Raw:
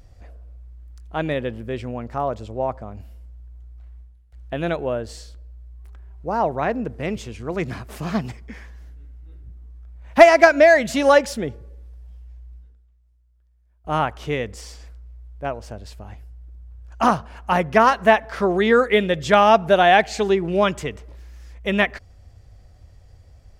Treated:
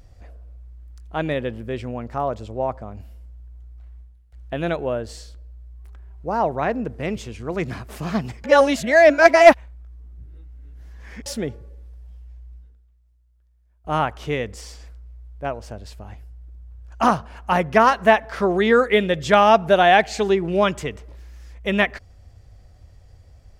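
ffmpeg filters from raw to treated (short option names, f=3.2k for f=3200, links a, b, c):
-filter_complex "[0:a]asplit=3[a][b][c];[a]atrim=end=8.442[d];[b]atrim=start=8.438:end=11.262,asetpts=PTS-STARTPTS,areverse[e];[c]atrim=start=11.258[f];[d][e]acrossfade=d=0.004:c1=hsin:c2=hsin[g];[g][f]acrossfade=d=0.004:c1=hsin:c2=hsin"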